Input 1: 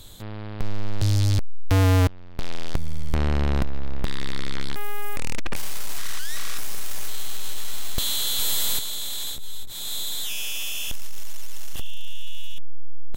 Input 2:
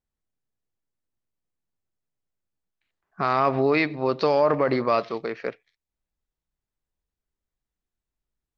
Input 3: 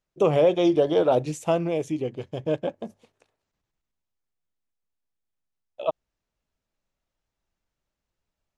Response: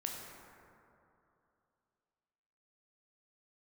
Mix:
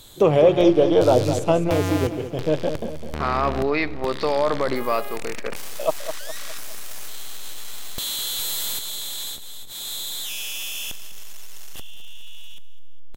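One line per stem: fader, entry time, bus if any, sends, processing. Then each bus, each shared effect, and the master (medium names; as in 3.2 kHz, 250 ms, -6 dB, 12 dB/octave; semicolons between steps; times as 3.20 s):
+1.0 dB, 0.00 s, no send, echo send -15.5 dB, compression 2.5:1, threshold -22 dBFS, peak gain reduction 4 dB
-1.5 dB, 0.00 s, send -18 dB, no echo send, none
+3.0 dB, 0.00 s, no send, echo send -9.5 dB, bass shelf 240 Hz +7.5 dB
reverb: on, RT60 2.8 s, pre-delay 13 ms
echo: feedback delay 206 ms, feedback 48%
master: bass shelf 130 Hz -10 dB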